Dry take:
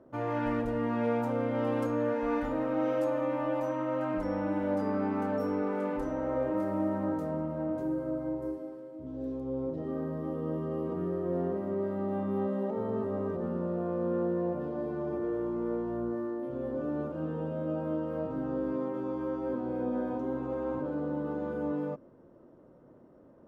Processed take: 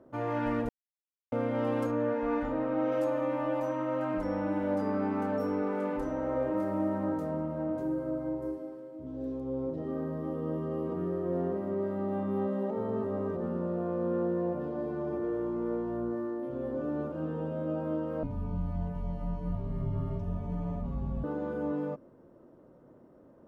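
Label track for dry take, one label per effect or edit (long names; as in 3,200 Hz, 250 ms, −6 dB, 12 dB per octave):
0.690000	1.320000	silence
1.910000	2.920000	low-pass filter 3,000 Hz 6 dB per octave
18.230000	21.240000	frequency shifter −350 Hz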